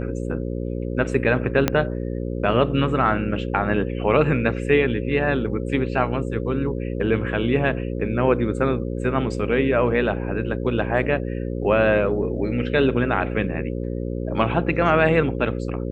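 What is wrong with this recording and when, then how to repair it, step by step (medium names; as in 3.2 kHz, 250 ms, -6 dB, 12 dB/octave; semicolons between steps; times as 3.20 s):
buzz 60 Hz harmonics 9 -27 dBFS
1.68 s: pop -4 dBFS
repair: de-click; de-hum 60 Hz, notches 9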